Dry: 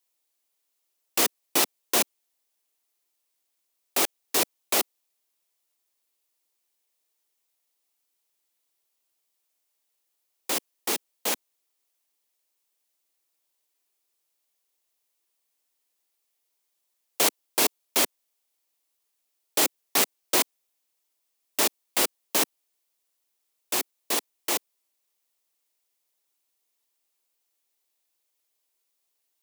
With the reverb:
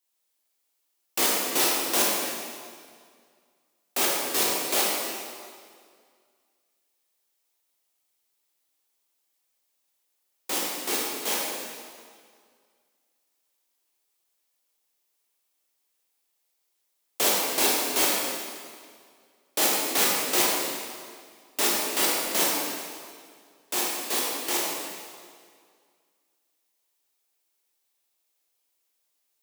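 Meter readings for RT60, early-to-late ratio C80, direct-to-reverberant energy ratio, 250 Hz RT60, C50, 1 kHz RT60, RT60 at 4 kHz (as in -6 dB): 2.0 s, 0.5 dB, -4.5 dB, 2.0 s, -1.5 dB, 2.0 s, 1.8 s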